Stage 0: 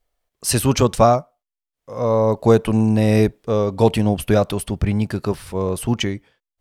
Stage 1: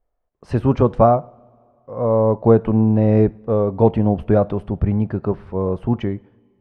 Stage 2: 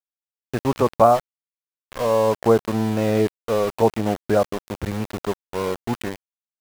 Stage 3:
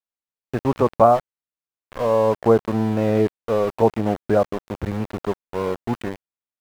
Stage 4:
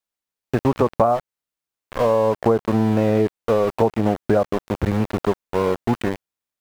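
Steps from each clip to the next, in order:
low-pass filter 1,100 Hz 12 dB per octave; coupled-rooms reverb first 0.53 s, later 2.5 s, from −18 dB, DRR 18.5 dB; level +1 dB
low-pass filter 2,900 Hz 12 dB per octave; spectral tilt +3.5 dB per octave; centre clipping without the shift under −27.5 dBFS; level +1.5 dB
high-shelf EQ 3,100 Hz −11 dB; level +1 dB
downward compressor 6 to 1, threshold −20 dBFS, peak gain reduction 11.5 dB; level +6 dB

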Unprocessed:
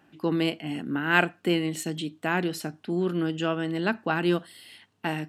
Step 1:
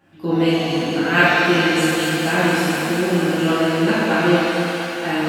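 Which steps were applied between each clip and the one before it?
low-shelf EQ 100 Hz +6.5 dB
feedback echo with a high-pass in the loop 227 ms, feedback 84%, high-pass 380 Hz, level −8 dB
reverb with rising layers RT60 1.9 s, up +7 semitones, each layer −8 dB, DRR −10.5 dB
level −2.5 dB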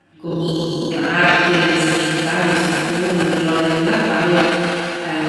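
Chebyshev low-pass filter 11,000 Hz, order 6
healed spectral selection 0:00.31–0:00.89, 260–3,000 Hz before
transient designer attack −5 dB, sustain +10 dB
level +1.5 dB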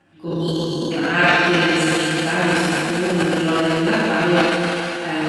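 de-essing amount 35%
level −1.5 dB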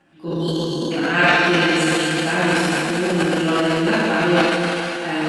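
parametric band 92 Hz −14 dB 0.33 octaves

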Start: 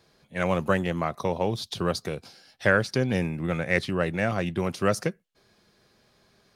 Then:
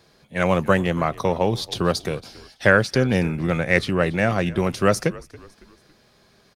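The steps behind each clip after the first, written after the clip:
echo with shifted repeats 278 ms, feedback 41%, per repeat −61 Hz, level −20.5 dB
level +5.5 dB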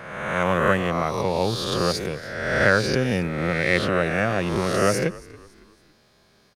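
peak hold with a rise ahead of every peak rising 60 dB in 1.28 s
level −4.5 dB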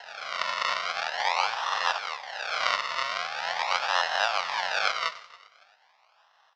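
sample-and-hold swept by an LFO 37×, swing 100% 0.43 Hz
elliptic band-pass filter 790–5,200 Hz, stop band 40 dB
feedback echo with a swinging delay time 94 ms, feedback 51%, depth 88 cents, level −18 dB
level +2.5 dB

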